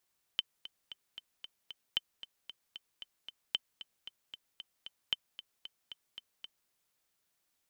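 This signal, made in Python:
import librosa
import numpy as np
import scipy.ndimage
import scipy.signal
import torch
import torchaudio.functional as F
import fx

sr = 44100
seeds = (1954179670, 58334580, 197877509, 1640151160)

y = fx.click_track(sr, bpm=228, beats=6, bars=4, hz=3070.0, accent_db=15.0, level_db=-16.5)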